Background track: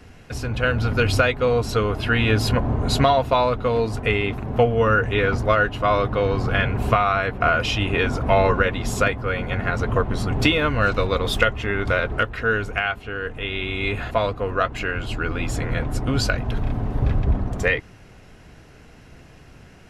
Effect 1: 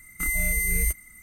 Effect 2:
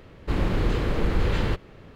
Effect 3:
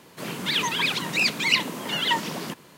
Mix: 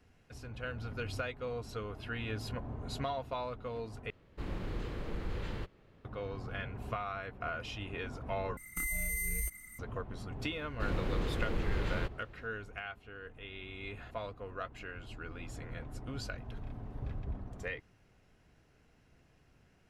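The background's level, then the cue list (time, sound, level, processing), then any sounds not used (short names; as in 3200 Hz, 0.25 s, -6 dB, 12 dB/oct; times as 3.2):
background track -19.5 dB
4.1 replace with 2 -15 dB
8.57 replace with 1 -2.5 dB + compressor 3:1, threshold -31 dBFS
10.52 add 2 -10.5 dB
not used: 3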